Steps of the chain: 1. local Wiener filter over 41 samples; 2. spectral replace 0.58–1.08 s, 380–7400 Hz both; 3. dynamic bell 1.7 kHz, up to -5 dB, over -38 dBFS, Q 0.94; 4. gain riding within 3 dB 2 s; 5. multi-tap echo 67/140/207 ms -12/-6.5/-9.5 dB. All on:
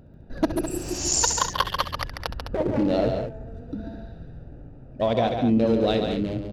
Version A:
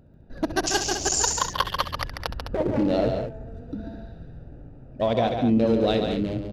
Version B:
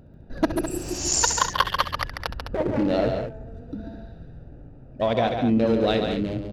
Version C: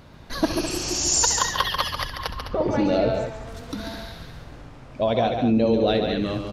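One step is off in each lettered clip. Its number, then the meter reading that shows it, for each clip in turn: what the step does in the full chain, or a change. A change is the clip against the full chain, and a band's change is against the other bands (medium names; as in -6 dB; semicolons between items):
2, 2 kHz band +2.5 dB; 3, momentary loudness spread change -3 LU; 1, 4 kHz band +2.5 dB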